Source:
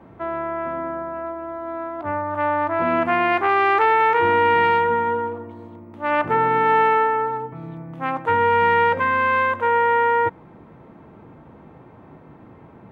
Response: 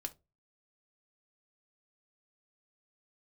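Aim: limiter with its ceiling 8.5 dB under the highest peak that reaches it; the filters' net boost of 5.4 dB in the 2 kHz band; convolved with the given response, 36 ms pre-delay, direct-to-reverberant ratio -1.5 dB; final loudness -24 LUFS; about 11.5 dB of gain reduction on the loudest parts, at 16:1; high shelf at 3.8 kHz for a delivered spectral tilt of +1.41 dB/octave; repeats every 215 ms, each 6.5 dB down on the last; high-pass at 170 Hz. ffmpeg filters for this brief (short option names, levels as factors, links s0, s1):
-filter_complex "[0:a]highpass=170,equalizer=f=2000:t=o:g=5.5,highshelf=f=3800:g=4.5,acompressor=threshold=0.0794:ratio=16,alimiter=limit=0.0891:level=0:latency=1,aecho=1:1:215|430|645|860|1075|1290:0.473|0.222|0.105|0.0491|0.0231|0.0109,asplit=2[s0][s1];[1:a]atrim=start_sample=2205,adelay=36[s2];[s1][s2]afir=irnorm=-1:irlink=0,volume=1.5[s3];[s0][s3]amix=inputs=2:normalize=0"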